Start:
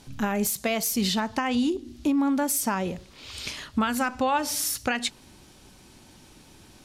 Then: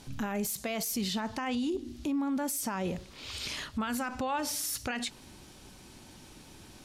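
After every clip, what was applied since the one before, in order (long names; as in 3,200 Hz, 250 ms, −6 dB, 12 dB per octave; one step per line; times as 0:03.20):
brickwall limiter −25 dBFS, peak gain reduction 10.5 dB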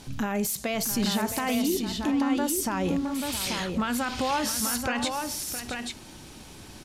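multi-tap delay 664/836 ms −11/−5 dB
level +5 dB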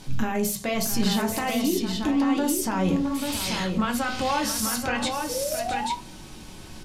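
sound drawn into the spectrogram rise, 0:05.29–0:05.95, 480–990 Hz −31 dBFS
on a send at −3 dB: convolution reverb RT60 0.35 s, pre-delay 5 ms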